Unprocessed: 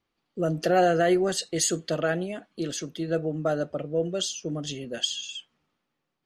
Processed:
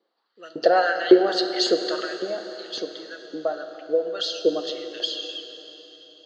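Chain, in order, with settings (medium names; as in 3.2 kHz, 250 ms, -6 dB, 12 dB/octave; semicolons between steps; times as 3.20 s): bass shelf 450 Hz +7 dB; 2.04–4.07 s: compression 3:1, threshold -29 dBFS, peak gain reduction 9.5 dB; LFO high-pass saw up 1.8 Hz 430–3300 Hz; cabinet simulation 160–4800 Hz, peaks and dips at 210 Hz +6 dB, 320 Hz +6 dB, 480 Hz +6 dB, 1.7 kHz +3 dB, 2.4 kHz -10 dB, 4.3 kHz +10 dB; plate-style reverb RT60 3.9 s, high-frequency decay 0.95×, DRR 6.5 dB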